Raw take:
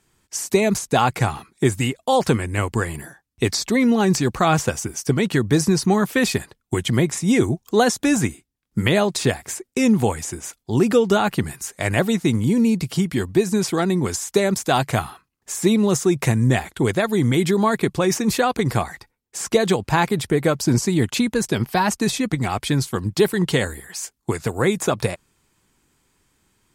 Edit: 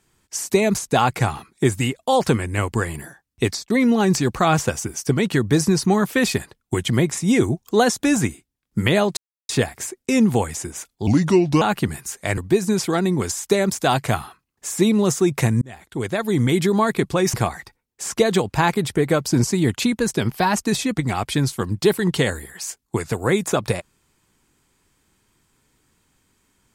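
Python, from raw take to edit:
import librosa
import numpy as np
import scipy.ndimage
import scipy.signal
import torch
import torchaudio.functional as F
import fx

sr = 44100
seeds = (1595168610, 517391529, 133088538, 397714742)

y = fx.edit(x, sr, fx.fade_out_span(start_s=3.45, length_s=0.25),
    fx.insert_silence(at_s=9.17, length_s=0.32),
    fx.speed_span(start_s=10.75, length_s=0.42, speed=0.77),
    fx.cut(start_s=11.93, length_s=1.29),
    fx.fade_in_span(start_s=16.46, length_s=0.79),
    fx.cut(start_s=18.18, length_s=0.5), tone=tone)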